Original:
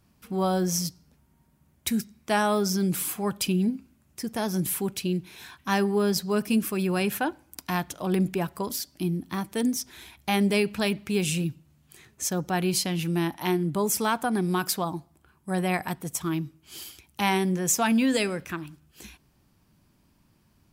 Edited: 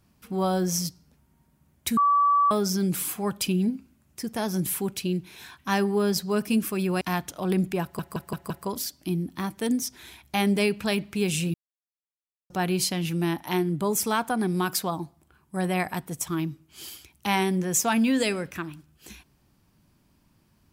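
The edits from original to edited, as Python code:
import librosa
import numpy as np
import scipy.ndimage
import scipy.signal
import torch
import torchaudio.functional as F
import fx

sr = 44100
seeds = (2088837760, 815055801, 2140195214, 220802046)

y = fx.edit(x, sr, fx.bleep(start_s=1.97, length_s=0.54, hz=1150.0, db=-17.0),
    fx.cut(start_s=7.01, length_s=0.62),
    fx.stutter(start_s=8.44, slice_s=0.17, count=5),
    fx.silence(start_s=11.48, length_s=0.96), tone=tone)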